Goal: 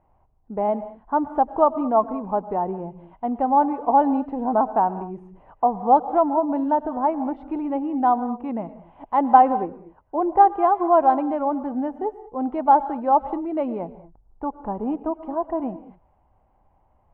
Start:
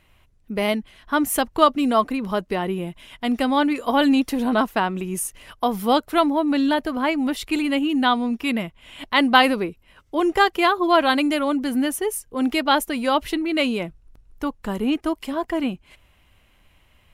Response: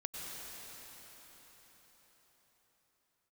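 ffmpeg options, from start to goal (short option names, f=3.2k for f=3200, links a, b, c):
-filter_complex "[0:a]lowpass=f=830:t=q:w=4.9,aemphasis=mode=reproduction:type=75kf,asplit=2[a][b];[1:a]atrim=start_sample=2205,afade=t=out:st=0.28:d=0.01,atrim=end_sample=12789[c];[b][c]afir=irnorm=-1:irlink=0,volume=-5.5dB[d];[a][d]amix=inputs=2:normalize=0,volume=-8dB"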